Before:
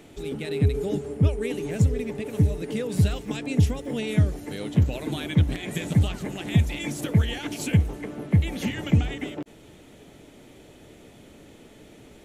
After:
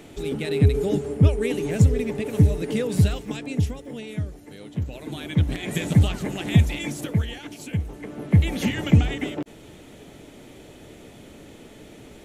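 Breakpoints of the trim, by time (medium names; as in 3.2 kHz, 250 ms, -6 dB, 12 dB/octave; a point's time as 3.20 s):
2.83 s +4 dB
4.21 s -8.5 dB
4.74 s -8.5 dB
5.73 s +3.5 dB
6.63 s +3.5 dB
7.66 s -8 dB
8.42 s +4 dB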